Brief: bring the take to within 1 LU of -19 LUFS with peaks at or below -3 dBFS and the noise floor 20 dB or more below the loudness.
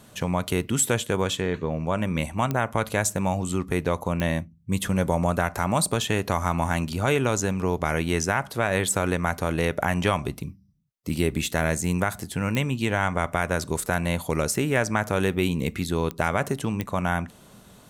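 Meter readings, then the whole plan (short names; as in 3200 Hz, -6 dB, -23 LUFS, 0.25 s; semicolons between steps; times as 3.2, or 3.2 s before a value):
clicks 5; loudness -25.5 LUFS; peak -6.5 dBFS; loudness target -19.0 LUFS
-> de-click; gain +6.5 dB; limiter -3 dBFS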